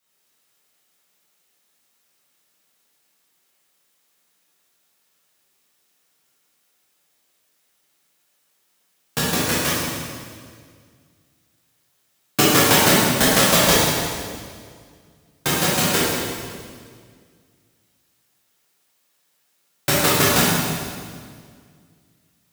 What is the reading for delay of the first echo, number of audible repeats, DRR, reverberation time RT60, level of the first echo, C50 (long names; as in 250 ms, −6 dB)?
no echo audible, no echo audible, −9.5 dB, 2.0 s, no echo audible, −3.0 dB